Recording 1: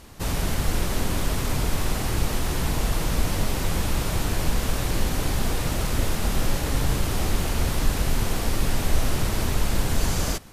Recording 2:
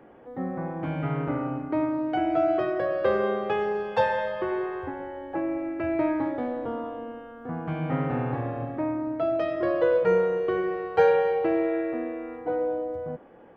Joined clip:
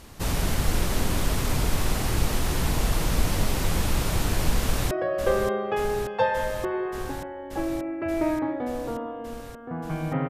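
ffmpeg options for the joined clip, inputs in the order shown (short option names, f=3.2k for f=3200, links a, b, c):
-filter_complex "[0:a]apad=whole_dur=10.29,atrim=end=10.29,atrim=end=4.912[a];[1:a]atrim=start=2.688:end=8.07[b];[a][b]acrossfade=d=0.004:c1=hsin:c2=hsin,asplit=2[c][d];[d]afade=t=in:st=4.6:d=0.01,afade=t=out:st=4.91:d=0.01,aecho=0:1:580|1160|1740|2320|2900|3480|4060|4640|5220|5800|6380|6960:0.398107|0.338391|0.287632|0.244488|0.207814|0.176642|0.150146|0.127624|0.10848|0.0922084|0.0783771|0.0666205[e];[c][e]amix=inputs=2:normalize=0"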